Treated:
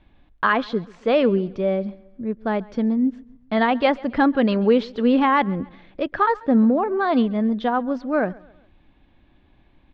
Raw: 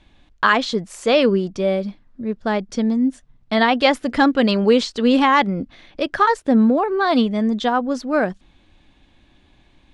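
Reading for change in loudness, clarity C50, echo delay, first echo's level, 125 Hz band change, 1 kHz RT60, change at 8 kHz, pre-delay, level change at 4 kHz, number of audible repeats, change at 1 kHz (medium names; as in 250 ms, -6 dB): -2.5 dB, no reverb, 136 ms, -23.0 dB, -1.5 dB, no reverb, no reading, no reverb, -9.5 dB, 2, -3.0 dB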